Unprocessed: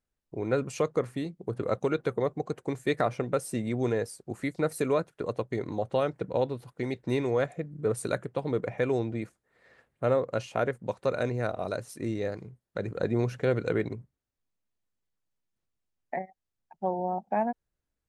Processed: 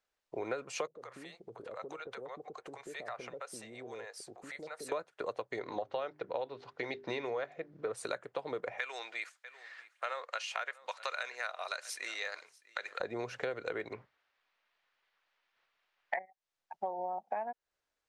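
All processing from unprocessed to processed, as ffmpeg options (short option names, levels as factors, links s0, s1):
-filter_complex "[0:a]asettb=1/sr,asplit=3[s0][s1][s2];[s0]atrim=end=0.874[s3];[s1]atrim=start=0.87:end=4.92,asetpts=PTS-STARTPTS,afade=t=in:d=0.004:c=qsin,afade=t=out:st=4.046:d=0.004:c=qsin,acompressor=threshold=0.00631:ratio=3:attack=3.2:release=140:knee=1:detection=peak,acrossover=split=570[s4][s5];[s5]adelay=80[s6];[s4][s6]amix=inputs=2:normalize=0,atrim=end_sample=178605[s7];[s2]atrim=start=4.916[s8];[s3][s7]acrossfade=d=0.004:c1=hsin:c2=qsin[s9];[s9][s8]acrossfade=d=0.004:c1=qsin:c2=hsin,asettb=1/sr,asplit=3[s10][s11][s12];[s10]atrim=end=5.604[s13];[s11]atrim=start=5.6:end=7.93,asetpts=PTS-STARTPTS,afade=t=in:d=0.004:c=qsin,afade=t=out:st=2.326:d=0.004:c=qsin,lowpass=f=5800:w=0.5412,lowpass=f=5800:w=1.3066,bandreject=f=50:t=h:w=6,bandreject=f=100:t=h:w=6,bandreject=f=150:t=h:w=6,bandreject=f=200:t=h:w=6,bandreject=f=250:t=h:w=6,bandreject=f=300:t=h:w=6,bandreject=f=350:t=h:w=6,bandreject=f=400:t=h:w=6[s14];[s12]atrim=start=7.926[s15];[s13][s14]acrossfade=d=0.004:c1=hsin:c2=qsin[s16];[s16][s15]acrossfade=d=0.004:c1=qsin:c2=hsin,asettb=1/sr,asplit=3[s17][s18][s19];[s17]atrim=end=8.794[s20];[s18]atrim=start=8.79:end=13,asetpts=PTS-STARTPTS,afade=t=in:d=0.004:c=qsin,afade=t=out:st=4.206:d=0.004:c=qsin,highpass=1500,aecho=1:1:645:0.0668,atrim=end_sample=185661,acontrast=33[s21];[s19]atrim=start=12.996[s22];[s20][s21]acrossfade=d=0.004:c1=hsin:c2=qsin[s23];[s23][s22]acrossfade=d=0.004:c1=qsin:c2=hsin,asettb=1/sr,asplit=3[s24][s25][s26];[s24]atrim=end=13.934[s27];[s25]atrim=start=13.93:end=16.19,asetpts=PTS-STARTPTS,afade=t=in:d=0.004:c=qsin,afade=t=out:st=2.256:d=0.004:c=qsin,lowpass=4200,equalizer=f=1900:w=0.35:g=14[s28];[s26]atrim=start=16.186[s29];[s27][s28]acrossfade=d=0.004:c1=hsin:c2=qsin[s30];[s30][s29]acrossfade=d=0.004:c1=qsin:c2=hsin,acrossover=split=460 7000:gain=0.1 1 0.2[s31][s32][s33];[s31][s32][s33]amix=inputs=3:normalize=0,acompressor=threshold=0.00891:ratio=6,volume=2.11"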